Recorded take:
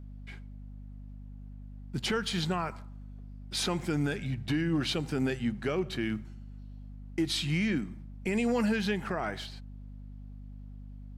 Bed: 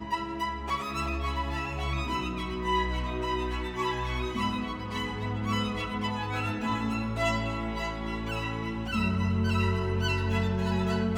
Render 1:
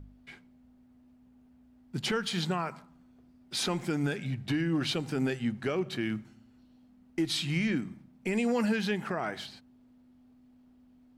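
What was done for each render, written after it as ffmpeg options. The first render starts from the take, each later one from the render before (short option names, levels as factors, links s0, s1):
-af "bandreject=f=50:t=h:w=4,bandreject=f=100:t=h:w=4,bandreject=f=150:t=h:w=4,bandreject=f=200:t=h:w=4"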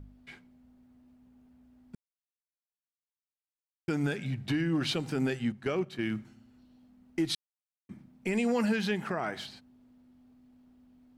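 -filter_complex "[0:a]asettb=1/sr,asplit=3[s0][s1][s2];[s0]atrim=end=5.524[s3];[s1]atrim=start=5.52:end=6.14,asetpts=PTS-STARTPTS,afade=t=in:d=0.004:c=qsin,afade=t=out:st=0.616:d=0.004:c=qsin,agate=range=0.398:threshold=0.02:ratio=16:release=100:detection=peak[s4];[s2]atrim=start=6.136[s5];[s3][s4]acrossfade=d=0.004:c1=hsin:c2=qsin[s6];[s6][s5]acrossfade=d=0.004:c1=qsin:c2=hsin,asplit=5[s7][s8][s9][s10][s11];[s7]atrim=end=1.95,asetpts=PTS-STARTPTS,afade=t=out:st=1.946:d=0.004:c=hsin[s12];[s8]atrim=start=1.95:end=3.88,asetpts=PTS-STARTPTS,volume=0[s13];[s9]atrim=start=3.88:end=7.35,asetpts=PTS-STARTPTS,afade=t=in:d=0.004:c=hsin,afade=t=out:st=3.466:d=0.004:c=hsin[s14];[s10]atrim=start=7.35:end=7.89,asetpts=PTS-STARTPTS,volume=0[s15];[s11]atrim=start=7.89,asetpts=PTS-STARTPTS,afade=t=in:d=0.004:c=hsin[s16];[s12][s13][s14][s15][s16]concat=n=5:v=0:a=1"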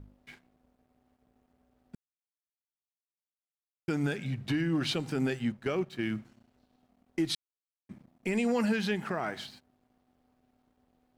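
-af "aeval=exprs='sgn(val(0))*max(abs(val(0))-0.001,0)':c=same"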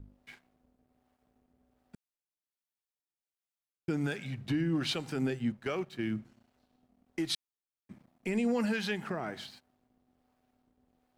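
-filter_complex "[0:a]acrossover=split=530[s0][s1];[s0]aeval=exprs='val(0)*(1-0.5/2+0.5/2*cos(2*PI*1.3*n/s))':c=same[s2];[s1]aeval=exprs='val(0)*(1-0.5/2-0.5/2*cos(2*PI*1.3*n/s))':c=same[s3];[s2][s3]amix=inputs=2:normalize=0"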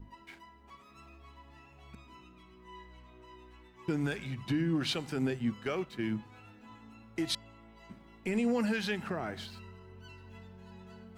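-filter_complex "[1:a]volume=0.0668[s0];[0:a][s0]amix=inputs=2:normalize=0"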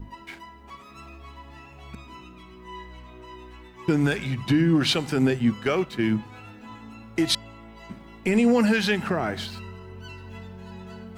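-af "volume=3.35"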